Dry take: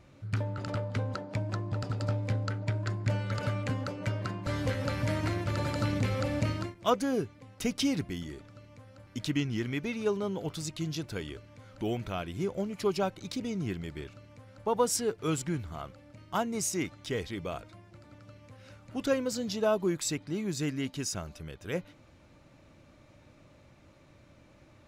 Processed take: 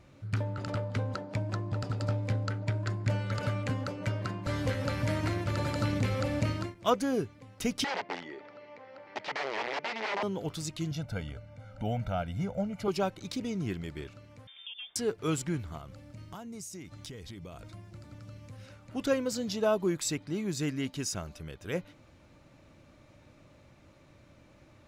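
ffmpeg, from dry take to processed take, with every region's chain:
-filter_complex "[0:a]asettb=1/sr,asplit=3[s0][s1][s2];[s0]atrim=end=7.844[s3];[s1]atrim=start=7.84:end=10.23,asetpts=PTS-STARTPTS,afade=t=in:d=0.004:c=qsin,afade=t=out:st=2.386:d=0.004:c=qsin,acompressor=mode=upward:threshold=0.00891:ratio=2.5:attack=3.2:release=140:knee=2.83:detection=peak,aeval=exprs='(mod(31.6*val(0)+1,2)-1)/31.6':c=same,highpass=350,equalizer=f=420:t=q:w=4:g=6,equalizer=f=600:t=q:w=4:g=4,equalizer=f=860:t=q:w=4:g=9,equalizer=f=2000:t=q:w=4:g=7,equalizer=f=3700:t=q:w=4:g=-4,lowpass=f=4500:w=0.5412,lowpass=f=4500:w=1.3066[s4];[s2]atrim=start=10.226[s5];[s3][s4]acrossfade=d=0.004:c1=hsin:c2=qsin[s6];[s6][s5]acrossfade=d=0.004:c1=qsin:c2=hsin,asettb=1/sr,asplit=3[s7][s8][s9];[s7]atrim=end=10.914[s10];[s8]atrim=start=10.91:end=12.88,asetpts=PTS-STARTPTS,afade=t=in:d=0.004:c=qsin,afade=t=out:st=1.966:d=0.004:c=qsin,highshelf=f=2100:g=-10,aecho=1:1:1.4:0.93,atrim=end_sample=86877[s11];[s9]atrim=start=12.876[s12];[s10][s11]acrossfade=d=0.004:c1=hsin:c2=qsin[s13];[s13][s12]acrossfade=d=0.004:c1=qsin:c2=hsin,asettb=1/sr,asplit=3[s14][s15][s16];[s14]atrim=end=14.474[s17];[s15]atrim=start=14.47:end=14.96,asetpts=PTS-STARTPTS,afade=t=in:d=0.004:c=qsin,afade=t=out:st=0.486:d=0.004:c=qsin,volume=9.44,asoftclip=hard,volume=0.106,acompressor=threshold=0.01:ratio=10:attack=3.2:release=140:knee=1:detection=peak,lowpass=f=3100:t=q:w=0.5098,lowpass=f=3100:t=q:w=0.6013,lowpass=f=3100:t=q:w=0.9,lowpass=f=3100:t=q:w=2.563,afreqshift=-3700[s18];[s16]atrim=start=14.956[s19];[s17][s18]acrossfade=d=0.004:c1=hsin:c2=qsin[s20];[s20][s19]acrossfade=d=0.004:c1=qsin:c2=hsin,asettb=1/sr,asplit=3[s21][s22][s23];[s21]atrim=end=15.774[s24];[s22]atrim=start=15.77:end=18.66,asetpts=PTS-STARTPTS,afade=t=in:d=0.004:c=qsin,afade=t=out:st=2.886:d=0.004:c=qsin,bass=f=250:g=7,treble=f=4000:g=6,acompressor=threshold=0.01:ratio=10:attack=3.2:release=140:knee=1:detection=peak[s25];[s23]atrim=start=18.656[s26];[s24][s25]acrossfade=d=0.004:c1=hsin:c2=qsin[s27];[s27][s26]acrossfade=d=0.004:c1=qsin:c2=hsin"

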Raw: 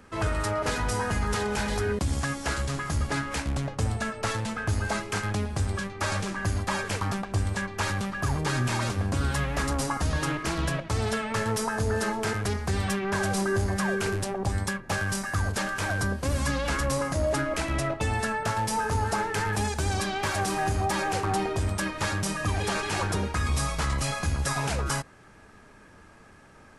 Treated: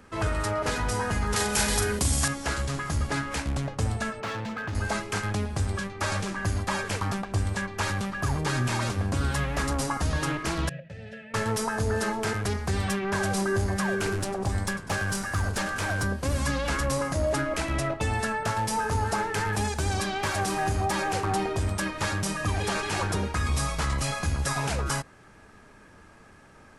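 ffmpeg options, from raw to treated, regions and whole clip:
-filter_complex "[0:a]asettb=1/sr,asplit=3[s0][s1][s2];[s0]atrim=end=1.364[s3];[s1]atrim=start=1.36:end=2.28,asetpts=PTS-STARTPTS,afade=t=in:d=0.004:c=qsin,afade=t=out:st=0.916:d=0.004:c=qsin,aemphasis=mode=production:type=75kf,asplit=2[s4][s5];[s5]adelay=42,volume=0.473[s6];[s4][s6]amix=inputs=2:normalize=0,atrim=end_sample=40572[s7];[s2]atrim=start=2.276[s8];[s3][s7]acrossfade=d=0.004:c1=hsin:c2=qsin[s9];[s9][s8]acrossfade=d=0.004:c1=qsin:c2=hsin,asettb=1/sr,asplit=3[s10][s11][s12];[s10]atrim=end=4.204[s13];[s11]atrim=start=4.2:end=4.75,asetpts=PTS-STARTPTS,afade=t=in:d=0.004:c=qsin,afade=t=out:st=0.546:d=0.004:c=qsin,highpass=120,lowpass=3700,volume=26.6,asoftclip=hard,volume=0.0376[s14];[s12]atrim=start=4.746[s15];[s13][s14]acrossfade=d=0.004:c1=hsin:c2=qsin[s16];[s16][s15]acrossfade=d=0.004:c1=qsin:c2=hsin,asettb=1/sr,asplit=3[s17][s18][s19];[s17]atrim=end=10.694[s20];[s18]atrim=start=10.69:end=11.34,asetpts=PTS-STARTPTS,afade=t=in:d=0.004:c=qsin,afade=t=out:st=0.646:d=0.004:c=qsin,asplit=3[s21][s22][s23];[s21]bandpass=f=530:t=q:w=8,volume=1[s24];[s22]bandpass=f=1840:t=q:w=8,volume=0.501[s25];[s23]bandpass=f=2480:t=q:w=8,volume=0.355[s26];[s24][s25][s26]amix=inputs=3:normalize=0,lowshelf=f=240:t=q:w=3:g=13[s27];[s19]atrim=start=11.336[s28];[s20][s27]acrossfade=d=0.004:c1=hsin:c2=qsin[s29];[s29][s28]acrossfade=d=0.004:c1=qsin:c2=hsin,asettb=1/sr,asplit=3[s30][s31][s32];[s30]atrim=end=13.824[s33];[s31]atrim=start=13.82:end=16.05,asetpts=PTS-STARTPTS,afade=t=in:d=0.004:c=qsin,afade=t=out:st=2.226:d=0.004:c=qsin,asplit=8[s34][s35][s36][s37][s38][s39][s40][s41];[s35]adelay=99,afreqshift=-89,volume=0.168[s42];[s36]adelay=198,afreqshift=-178,volume=0.106[s43];[s37]adelay=297,afreqshift=-267,volume=0.0668[s44];[s38]adelay=396,afreqshift=-356,volume=0.0422[s45];[s39]adelay=495,afreqshift=-445,volume=0.0263[s46];[s40]adelay=594,afreqshift=-534,volume=0.0166[s47];[s41]adelay=693,afreqshift=-623,volume=0.0105[s48];[s34][s42][s43][s44][s45][s46][s47][s48]amix=inputs=8:normalize=0,atrim=end_sample=98343,volume=10.6,asoftclip=hard,volume=0.0944[s49];[s32]atrim=start=16.046[s50];[s33][s49]acrossfade=d=0.004:c1=hsin:c2=qsin[s51];[s51][s50]acrossfade=d=0.004:c1=qsin:c2=hsin"

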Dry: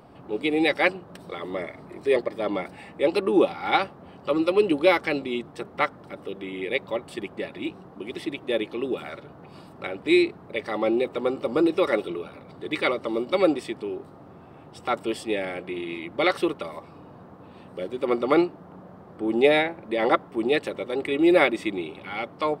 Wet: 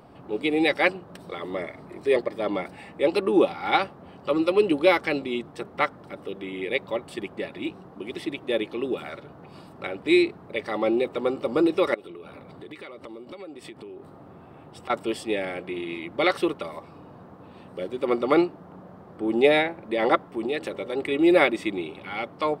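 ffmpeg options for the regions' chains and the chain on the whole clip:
-filter_complex "[0:a]asettb=1/sr,asplit=3[s0][s1][s2];[s0]atrim=end=11.944[s3];[s1]atrim=start=11.94:end=14.9,asetpts=PTS-STARTPTS,afade=t=in:d=0.004:c=qsin,afade=t=out:st=2.956:d=0.004:c=qsin,equalizer=f=5700:t=o:w=0.72:g=-3.5,acompressor=threshold=0.0141:ratio=10:attack=3.2:release=140:knee=1:detection=peak[s4];[s2]atrim=start=14.896[s5];[s3][s4]acrossfade=d=0.004:c1=hsin:c2=qsin[s6];[s6][s5]acrossfade=d=0.004:c1=qsin:c2=hsin,asettb=1/sr,asplit=3[s7][s8][s9];[s7]atrim=end=20.224[s10];[s8]atrim=start=20.22:end=20.97,asetpts=PTS-STARTPTS,afade=t=in:d=0.004:c=qsin,afade=t=out:st=0.746:d=0.004:c=qsin,bandreject=f=80.82:t=h:w=4,bandreject=f=161.64:t=h:w=4,bandreject=f=242.46:t=h:w=4,bandreject=f=323.28:t=h:w=4,bandreject=f=404.1:t=h:w=4,bandreject=f=484.92:t=h:w=4,bandreject=f=565.74:t=h:w=4,bandreject=f=646.56:t=h:w=4,bandreject=f=727.38:t=h:w=4,bandreject=f=808.2:t=h:w=4,bandreject=f=889.02:t=h:w=4,bandreject=f=969.84:t=h:w=4,bandreject=f=1050.66:t=h:w=4,bandreject=f=1131.48:t=h:w=4,bandreject=f=1212.3:t=h:w=4,bandreject=f=1293.12:t=h:w=4,bandreject=f=1373.94:t=h:w=4,bandreject=f=1454.76:t=h:w=4,bandreject=f=1535.58:t=h:w=4,acompressor=threshold=0.0562:ratio=2.5:attack=3.2:release=140:knee=1:detection=peak[s11];[s9]atrim=start=20.966[s12];[s10][s11]acrossfade=d=0.004:c1=hsin:c2=qsin[s13];[s13][s12]acrossfade=d=0.004:c1=qsin:c2=hsin"

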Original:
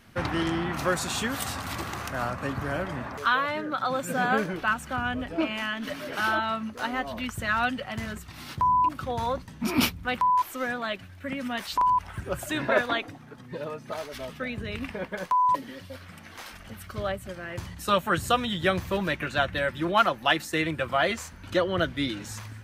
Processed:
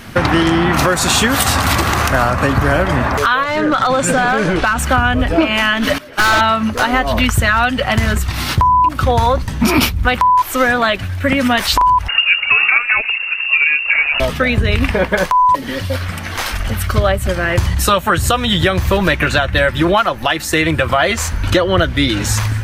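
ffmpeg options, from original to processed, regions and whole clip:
-filter_complex "[0:a]asettb=1/sr,asplit=3[s0][s1][s2];[s0]atrim=end=3.434[s3];[s1]atrim=start=3.43:end=4.79,asetpts=PTS-STARTPTS,afade=t=in:d=0.004:c=qsin,afade=t=out:st=1.356:d=0.004:c=qsin,lowpass=f=9600:w=0.5412,lowpass=f=9600:w=1.3066,acompressor=threshold=0.0398:ratio=16:attack=3.2:release=140:knee=1:detection=peak,asoftclip=type=hard:threshold=0.0422[s4];[s2]atrim=start=4.786[s5];[s3][s4]acrossfade=d=0.004:c1=hsin:c2=qsin[s6];[s6][s5]acrossfade=d=0.004:c1=qsin:c2=hsin,asettb=1/sr,asplit=3[s7][s8][s9];[s7]atrim=end=5.984[s10];[s8]atrim=start=5.98:end=6.41,asetpts=PTS-STARTPTS,afade=t=in:d=0.004:c=qsin,afade=t=out:st=0.426:d=0.004:c=qsin,agate=range=0.0251:threshold=0.0282:ratio=16:release=100:detection=peak,acompressor=mode=upward:threshold=0.00631:ratio=2.5:attack=3.2:release=140:knee=2.83:detection=peak,asoftclip=type=hard:threshold=0.0376[s11];[s9]atrim=start=6.406[s12];[s10][s11]acrossfade=d=0.004:c1=hsin:c2=qsin[s13];[s13][s12]acrossfade=d=0.004:c1=qsin:c2=hsin,asettb=1/sr,asplit=3[s14][s15][s16];[s14]atrim=end=12.084[s17];[s15]atrim=start=12.08:end=14.2,asetpts=PTS-STARTPTS,afade=t=in:d=0.004:c=qsin,afade=t=out:st=2.116:d=0.004:c=qsin,tiltshelf=f=1100:g=6.5,lowpass=f=2500:t=q:w=0.5098,lowpass=f=2500:t=q:w=0.6013,lowpass=f=2500:t=q:w=0.9,lowpass=f=2500:t=q:w=2.563,afreqshift=-2900[s18];[s16]atrim=start=14.196[s19];[s17][s18]acrossfade=d=0.004:c1=hsin:c2=qsin[s20];[s20][s19]acrossfade=d=0.004:c1=qsin:c2=hsin,asubboost=boost=4:cutoff=81,acompressor=threshold=0.0316:ratio=10,alimiter=level_in=12.6:limit=0.891:release=50:level=0:latency=1,volume=0.891"

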